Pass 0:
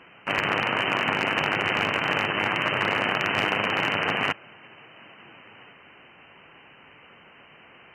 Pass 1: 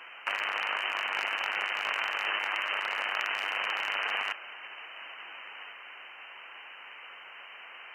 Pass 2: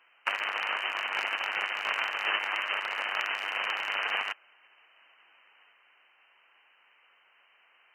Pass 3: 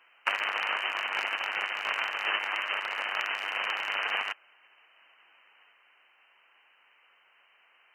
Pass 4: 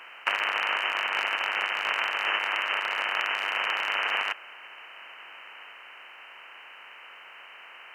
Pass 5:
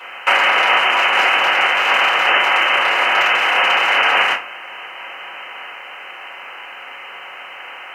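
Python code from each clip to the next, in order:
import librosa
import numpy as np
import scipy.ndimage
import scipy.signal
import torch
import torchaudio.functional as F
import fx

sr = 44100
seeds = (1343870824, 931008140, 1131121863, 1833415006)

y1 = scipy.signal.sosfilt(scipy.signal.butter(2, 890.0, 'highpass', fs=sr, output='sos'), x)
y1 = fx.high_shelf(y1, sr, hz=8200.0, db=3.5)
y1 = fx.over_compress(y1, sr, threshold_db=-32.0, ratio=-1.0)
y2 = fx.upward_expand(y1, sr, threshold_db=-43.0, expansion=2.5)
y2 = y2 * 10.0 ** (4.0 / 20.0)
y3 = fx.rider(y2, sr, range_db=10, speed_s=2.0)
y4 = fx.bin_compress(y3, sr, power=0.6)
y5 = fx.room_shoebox(y4, sr, seeds[0], volume_m3=120.0, walls='furnished', distance_m=5.0)
y5 = y5 * 10.0 ** (4.0 / 20.0)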